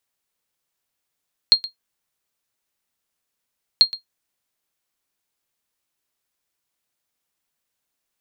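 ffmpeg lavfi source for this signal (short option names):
-f lavfi -i "aevalsrc='0.708*(sin(2*PI*4230*mod(t,2.29))*exp(-6.91*mod(t,2.29)/0.12)+0.133*sin(2*PI*4230*max(mod(t,2.29)-0.12,0))*exp(-6.91*max(mod(t,2.29)-0.12,0)/0.12))':d=4.58:s=44100"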